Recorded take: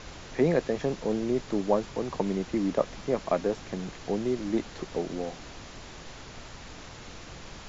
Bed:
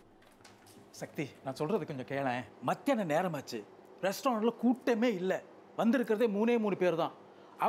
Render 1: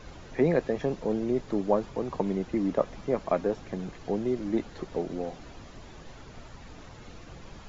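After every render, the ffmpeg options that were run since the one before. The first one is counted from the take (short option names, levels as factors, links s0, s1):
-af "afftdn=nr=9:nf=-45"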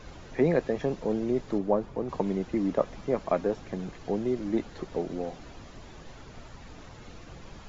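-filter_complex "[0:a]asettb=1/sr,asplit=3[s0][s1][s2];[s0]atrim=end=1.584[s3];[s1]atrim=start=1.58:end=2.09,asetpts=PTS-STARTPTS,afade=t=in:d=0.004:c=qsin,afade=t=out:st=0.506:d=0.004:c=qsin,highshelf=f=2000:g=-9.5[s4];[s2]atrim=start=2.086[s5];[s3][s4]acrossfade=d=0.004:c1=hsin:c2=qsin[s6];[s6][s5]acrossfade=d=0.004:c1=qsin:c2=hsin"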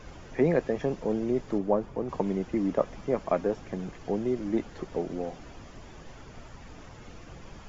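-af "equalizer=f=4000:w=5.8:g=-7"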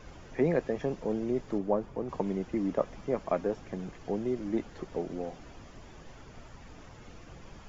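-af "volume=0.708"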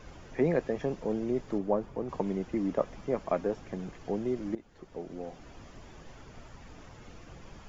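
-filter_complex "[0:a]asplit=2[s0][s1];[s0]atrim=end=4.55,asetpts=PTS-STARTPTS,afade=t=out:st=4.546:d=0.004:c=hsin:silence=0.133352[s2];[s1]atrim=start=4.55,asetpts=PTS-STARTPTS,afade=t=in:d=1.08:silence=0.133352[s3];[s2][s3]concat=n=2:v=0:a=1"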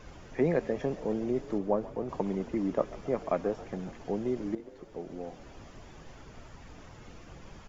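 -filter_complex "[0:a]asplit=7[s0][s1][s2][s3][s4][s5][s6];[s1]adelay=137,afreqshift=45,volume=0.126[s7];[s2]adelay=274,afreqshift=90,volume=0.0804[s8];[s3]adelay=411,afreqshift=135,volume=0.0513[s9];[s4]adelay=548,afreqshift=180,volume=0.0331[s10];[s5]adelay=685,afreqshift=225,volume=0.0211[s11];[s6]adelay=822,afreqshift=270,volume=0.0135[s12];[s0][s7][s8][s9][s10][s11][s12]amix=inputs=7:normalize=0"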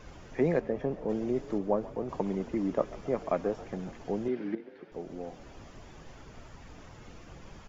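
-filter_complex "[0:a]asplit=3[s0][s1][s2];[s0]afade=t=out:st=0.59:d=0.02[s3];[s1]lowpass=f=1500:p=1,afade=t=in:st=0.59:d=0.02,afade=t=out:st=1.08:d=0.02[s4];[s2]afade=t=in:st=1.08:d=0.02[s5];[s3][s4][s5]amix=inputs=3:normalize=0,asettb=1/sr,asplit=3[s6][s7][s8];[s6]atrim=end=4.284[s9];[s7]atrim=start=4.28:end=4.92,asetpts=PTS-STARTPTS,afade=t=in:d=0.004:c=qsin,afade=t=out:st=0.636:d=0.004:c=qsin,highpass=f=130:w=0.5412,highpass=f=130:w=1.3066,equalizer=f=140:t=q:w=4:g=-7,equalizer=f=610:t=q:w=4:g=-4,equalizer=f=1100:t=q:w=4:g=-5,equalizer=f=1600:t=q:w=4:g=8,equalizer=f=2300:t=q:w=4:g=5,lowpass=f=4300:w=0.5412,lowpass=f=4300:w=1.3066[s10];[s8]atrim=start=4.916[s11];[s9][s10]acrossfade=d=0.004:c1=hsin:c2=qsin[s12];[s12][s11]acrossfade=d=0.004:c1=qsin:c2=hsin"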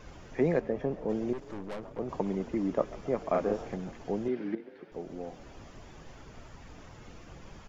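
-filter_complex "[0:a]asettb=1/sr,asplit=3[s0][s1][s2];[s0]atrim=end=1.334[s3];[s1]atrim=start=1.33:end=1.99,asetpts=PTS-STARTPTS,afade=t=in:d=0.004:c=qsin,afade=t=out:st=0.656:d=0.004:c=qsin,aeval=exprs='(tanh(63.1*val(0)+0.65)-tanh(0.65))/63.1':c=same[s4];[s2]atrim=start=1.986[s5];[s3][s4]acrossfade=d=0.004:c1=hsin:c2=qsin[s6];[s6][s5]acrossfade=d=0.004:c1=qsin:c2=hsin,asettb=1/sr,asplit=3[s7][s8][s9];[s7]atrim=end=3.304[s10];[s8]atrim=start=3.3:end=3.76,asetpts=PTS-STARTPTS,afade=t=in:d=0.004:c=qsin,afade=t=out:st=0.456:d=0.004:c=qsin,asplit=2[s11][s12];[s12]adelay=38,volume=0.794[s13];[s11][s13]amix=inputs=2:normalize=0,atrim=end_sample=20286[s14];[s9]atrim=start=3.756[s15];[s10][s14]acrossfade=d=0.004:c1=hsin:c2=qsin[s16];[s16][s15]acrossfade=d=0.004:c1=qsin:c2=hsin"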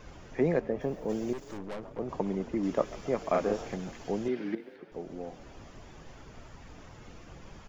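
-filter_complex "[0:a]asplit=3[s0][s1][s2];[s0]afade=t=out:st=0.8:d=0.02[s3];[s1]aemphasis=mode=production:type=75fm,afade=t=in:st=0.8:d=0.02,afade=t=out:st=1.57:d=0.02[s4];[s2]afade=t=in:st=1.57:d=0.02[s5];[s3][s4][s5]amix=inputs=3:normalize=0,asettb=1/sr,asplit=3[s6][s7][s8];[s6]atrim=end=2.634[s9];[s7]atrim=start=2.63:end=4.76,asetpts=PTS-STARTPTS,afade=t=in:d=0.004:c=qsin,afade=t=out:st=2.126:d=0.004:c=qsin,highshelf=f=2200:g=8.5[s10];[s8]atrim=start=4.756[s11];[s9][s10]acrossfade=d=0.004:c1=hsin:c2=qsin[s12];[s12][s11]acrossfade=d=0.004:c1=qsin:c2=hsin"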